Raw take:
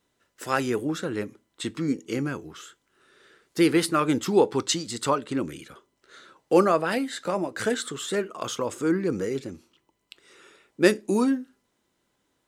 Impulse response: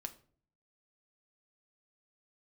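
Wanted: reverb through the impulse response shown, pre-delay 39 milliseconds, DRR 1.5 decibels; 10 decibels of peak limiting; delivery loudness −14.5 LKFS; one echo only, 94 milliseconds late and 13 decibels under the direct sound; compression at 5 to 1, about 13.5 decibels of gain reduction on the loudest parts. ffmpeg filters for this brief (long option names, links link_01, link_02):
-filter_complex "[0:a]acompressor=threshold=-29dB:ratio=5,alimiter=level_in=2dB:limit=-24dB:level=0:latency=1,volume=-2dB,aecho=1:1:94:0.224,asplit=2[link_01][link_02];[1:a]atrim=start_sample=2205,adelay=39[link_03];[link_02][link_03]afir=irnorm=-1:irlink=0,volume=1.5dB[link_04];[link_01][link_04]amix=inputs=2:normalize=0,volume=19.5dB"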